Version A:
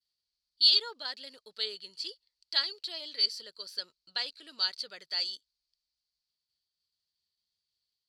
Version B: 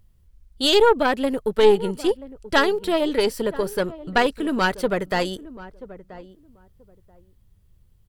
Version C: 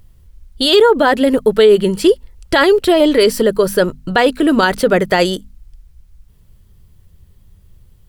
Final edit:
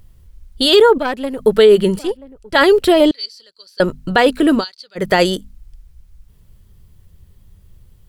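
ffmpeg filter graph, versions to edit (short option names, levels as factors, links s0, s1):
-filter_complex "[1:a]asplit=2[s0][s1];[0:a]asplit=2[s2][s3];[2:a]asplit=5[s4][s5][s6][s7][s8];[s4]atrim=end=0.982[s9];[s0]atrim=start=0.978:end=1.392[s10];[s5]atrim=start=1.388:end=1.992[s11];[s1]atrim=start=1.988:end=2.552[s12];[s6]atrim=start=2.548:end=3.112[s13];[s2]atrim=start=3.108:end=3.802[s14];[s7]atrim=start=3.798:end=4.65[s15];[s3]atrim=start=4.55:end=5.05[s16];[s8]atrim=start=4.95[s17];[s9][s10]acrossfade=d=0.004:c1=hsin:c2=hsin[s18];[s18][s11]acrossfade=d=0.004:c1=hsin:c2=hsin[s19];[s19][s12]acrossfade=d=0.004:c1=hsin:c2=hsin[s20];[s20][s13]acrossfade=d=0.004:c1=hsin:c2=hsin[s21];[s21][s14]acrossfade=d=0.004:c1=hsin:c2=hsin[s22];[s22][s15]acrossfade=d=0.004:c1=hsin:c2=hsin[s23];[s23][s16]acrossfade=d=0.1:c1=tri:c2=tri[s24];[s24][s17]acrossfade=d=0.1:c1=tri:c2=tri"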